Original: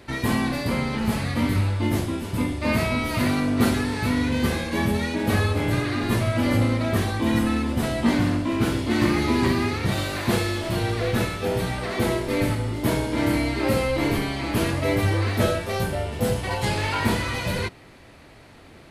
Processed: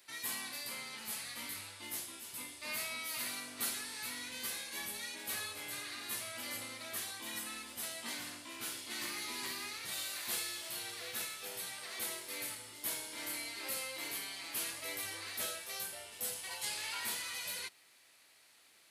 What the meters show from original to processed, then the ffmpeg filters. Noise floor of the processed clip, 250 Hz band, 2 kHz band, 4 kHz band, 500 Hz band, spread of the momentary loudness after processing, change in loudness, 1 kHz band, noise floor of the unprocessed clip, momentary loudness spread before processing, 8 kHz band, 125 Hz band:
-64 dBFS, -31.5 dB, -14.0 dB, -8.5 dB, -26.0 dB, 5 LU, -16.0 dB, -20.0 dB, -48 dBFS, 4 LU, -2.0 dB, -38.5 dB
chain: -af "aderivative,volume=0.708"

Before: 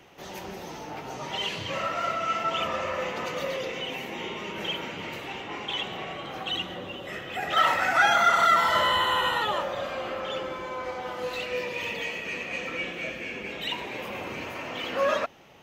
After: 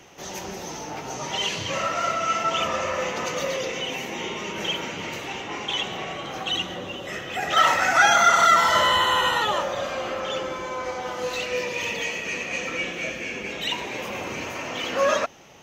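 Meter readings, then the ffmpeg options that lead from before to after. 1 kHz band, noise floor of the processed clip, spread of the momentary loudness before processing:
+3.5 dB, -36 dBFS, 15 LU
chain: -af "equalizer=f=6200:w=2.4:g=10,volume=1.5"

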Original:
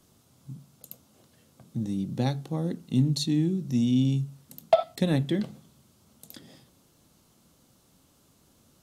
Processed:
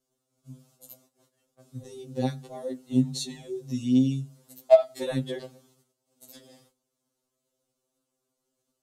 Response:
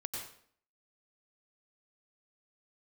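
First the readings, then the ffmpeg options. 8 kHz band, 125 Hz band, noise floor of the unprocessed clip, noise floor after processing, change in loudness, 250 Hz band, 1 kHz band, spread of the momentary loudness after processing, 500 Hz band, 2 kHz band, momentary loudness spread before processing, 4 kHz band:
0.0 dB, -6.0 dB, -63 dBFS, -82 dBFS, +0.5 dB, -1.5 dB, -2.0 dB, 22 LU, +4.5 dB, -3.0 dB, 14 LU, -3.5 dB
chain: -af "agate=range=0.141:threshold=0.00126:ratio=16:detection=peak,equalizer=f=125:t=o:w=1:g=-8,equalizer=f=500:t=o:w=1:g=8,equalizer=f=8000:t=o:w=1:g=5,afftfilt=real='re*2.45*eq(mod(b,6),0)':imag='im*2.45*eq(mod(b,6),0)':win_size=2048:overlap=0.75,volume=0.841"

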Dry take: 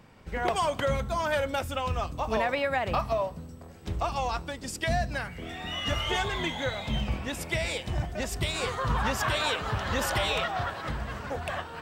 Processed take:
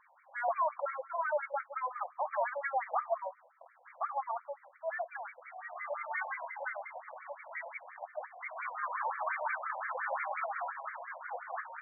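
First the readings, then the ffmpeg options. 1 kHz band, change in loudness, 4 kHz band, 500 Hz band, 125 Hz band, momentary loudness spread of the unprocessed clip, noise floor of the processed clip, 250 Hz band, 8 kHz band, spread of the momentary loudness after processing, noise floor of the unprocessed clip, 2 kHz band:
-4.0 dB, -7.5 dB, under -40 dB, -8.0 dB, under -40 dB, 8 LU, -64 dBFS, under -40 dB, under -40 dB, 11 LU, -45 dBFS, -6.5 dB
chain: -af "equalizer=f=66:t=o:w=0.36:g=10,acontrast=71,asoftclip=type=hard:threshold=0.211,lowpass=f=5200:t=q:w=4.9,afftfilt=real='re*between(b*sr/1024,700*pow(1700/700,0.5+0.5*sin(2*PI*5.7*pts/sr))/1.41,700*pow(1700/700,0.5+0.5*sin(2*PI*5.7*pts/sr))*1.41)':imag='im*between(b*sr/1024,700*pow(1700/700,0.5+0.5*sin(2*PI*5.7*pts/sr))/1.41,700*pow(1700/700,0.5+0.5*sin(2*PI*5.7*pts/sr))*1.41)':win_size=1024:overlap=0.75,volume=0.398"

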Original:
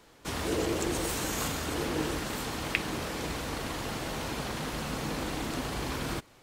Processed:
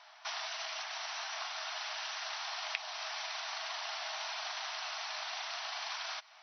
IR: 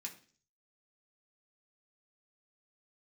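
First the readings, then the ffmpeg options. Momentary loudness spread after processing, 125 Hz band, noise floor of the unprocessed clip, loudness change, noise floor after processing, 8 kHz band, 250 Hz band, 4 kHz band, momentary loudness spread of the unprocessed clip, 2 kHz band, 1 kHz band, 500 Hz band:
1 LU, under -40 dB, -58 dBFS, -5.5 dB, -58 dBFS, -8.0 dB, under -40 dB, 0.0 dB, 5 LU, -3.0 dB, -4.0 dB, -15.0 dB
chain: -filter_complex "[0:a]acrossover=split=1100|3100[s0][s1][s2];[s0]acompressor=threshold=0.00708:ratio=4[s3];[s1]acompressor=threshold=0.00355:ratio=4[s4];[s2]acompressor=threshold=0.00794:ratio=4[s5];[s3][s4][s5]amix=inputs=3:normalize=0,afftfilt=real='re*between(b*sr/4096,610,6100)':imag='im*between(b*sr/4096,610,6100)':win_size=4096:overlap=0.75,volume=1.58"

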